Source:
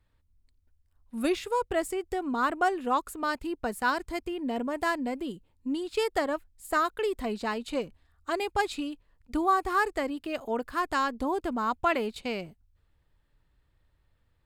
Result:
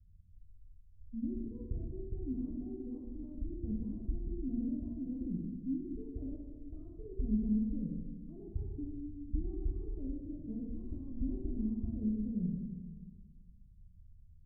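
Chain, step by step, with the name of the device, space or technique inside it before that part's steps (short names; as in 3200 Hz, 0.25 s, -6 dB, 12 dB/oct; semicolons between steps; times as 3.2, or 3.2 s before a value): club heard from the street (limiter -23 dBFS, peak gain reduction 9.5 dB; LPF 180 Hz 24 dB/oct; reverb RT60 1.5 s, pre-delay 6 ms, DRR -2.5 dB); gain +6 dB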